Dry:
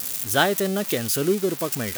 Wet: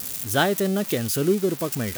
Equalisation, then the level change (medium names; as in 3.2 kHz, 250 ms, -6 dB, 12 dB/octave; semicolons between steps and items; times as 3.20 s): bass shelf 350 Hz +6.5 dB; -2.5 dB